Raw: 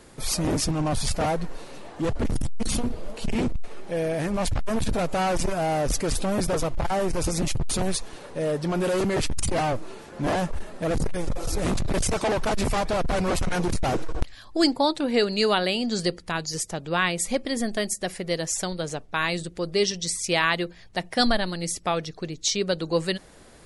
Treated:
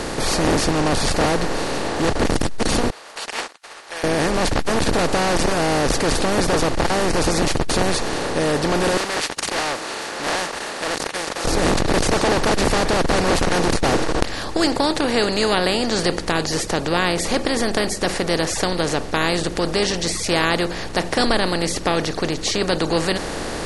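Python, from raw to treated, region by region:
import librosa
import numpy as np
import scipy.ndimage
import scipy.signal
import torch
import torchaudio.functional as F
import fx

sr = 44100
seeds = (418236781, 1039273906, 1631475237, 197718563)

y = fx.chain(x, sr, fx.highpass(hz=1100.0, slope=24),
    fx.upward_expand(threshold_db=-58.0, expansion=2.5), at=(2.9, 4.04))
y = fx.chain(y, sr, fx.highpass(hz=1400.0, slope=12),
    fx.doppler_dist(depth_ms=0.17), at=(8.97, 11.45))
y = fx.bin_compress(y, sr, power=0.4)
y = fx.high_shelf(y, sr, hz=7500.0, db=-5.0)
y = y * librosa.db_to_amplitude(-1.5)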